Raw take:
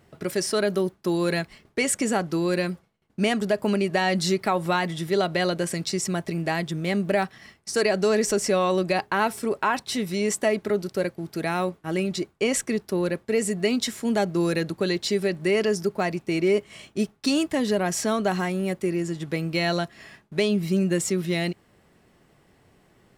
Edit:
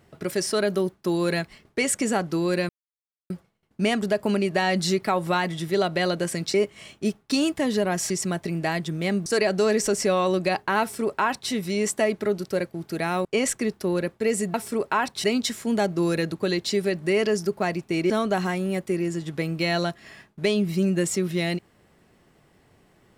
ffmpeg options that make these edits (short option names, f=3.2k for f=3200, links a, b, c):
-filter_complex "[0:a]asplit=9[a][b][c][d][e][f][g][h][i];[a]atrim=end=2.69,asetpts=PTS-STARTPTS,afade=t=out:st=2.686:d=0.004:c=hsin,apad=pad_dur=0.61[j];[b]atrim=start=2.69:end=5.932,asetpts=PTS-STARTPTS,afade=t=in:d=0.004:c=hsin[k];[c]atrim=start=16.478:end=18.042[l];[d]atrim=start=5.928:end=7.092[m];[e]atrim=start=7.698:end=11.692[n];[f]atrim=start=12.328:end=13.622[o];[g]atrim=start=9.248:end=9.952[p];[h]atrim=start=13.618:end=16.482[q];[i]atrim=start=18.038[r];[j][k]concat=n=2:v=0:a=1[s];[s][l]acrossfade=d=0.004:c1=hsin:c2=hsin[t];[t][m]acrossfade=d=0.004:c1=hsin:c2=hsin[u];[u][n]acrossfade=d=0.004:c1=hsin:c2=hsin[v];[v][o]acrossfade=d=0.004:c1=hsin:c2=hsin[w];[w][p]acrossfade=d=0.004:c1=hsin:c2=hsin[x];[x][q]acrossfade=d=0.004:c1=hsin:c2=hsin[y];[y][r]acrossfade=d=0.004:c1=hsin:c2=hsin"